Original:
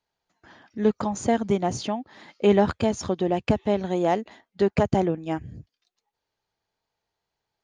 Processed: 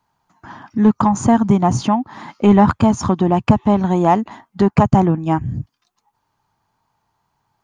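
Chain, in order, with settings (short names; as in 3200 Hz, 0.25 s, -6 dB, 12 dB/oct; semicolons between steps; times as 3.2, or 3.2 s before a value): graphic EQ 125/250/500/1000/2000/4000 Hz +8/+5/-10/+12/-4/-6 dB; in parallel at -1 dB: compressor, threshold -29 dBFS, peak gain reduction 17.5 dB; on the sum: soft clip -6.5 dBFS, distortion -19 dB; gain +5.5 dB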